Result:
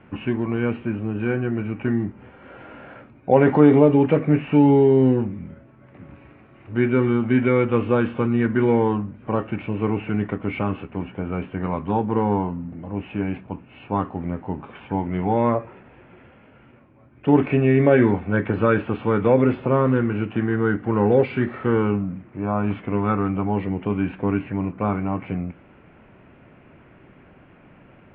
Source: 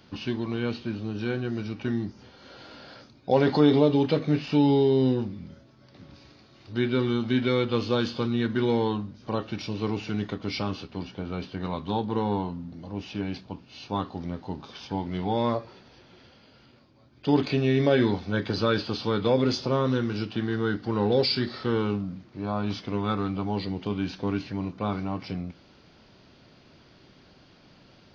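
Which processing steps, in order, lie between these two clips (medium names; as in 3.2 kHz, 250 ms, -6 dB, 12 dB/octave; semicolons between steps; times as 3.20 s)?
steep low-pass 2.6 kHz 48 dB/octave; trim +6 dB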